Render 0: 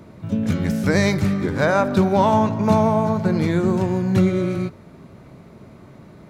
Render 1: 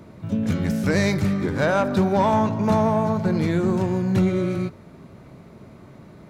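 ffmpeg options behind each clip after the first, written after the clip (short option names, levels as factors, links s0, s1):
-af "asoftclip=type=tanh:threshold=0.316,volume=0.891"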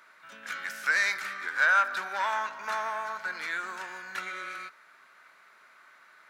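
-af "highpass=f=1500:t=q:w=3.4,volume=0.631"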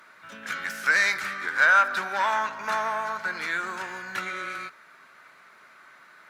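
-af "lowshelf=f=270:g=11,volume=1.58" -ar 48000 -c:a libopus -b:a 48k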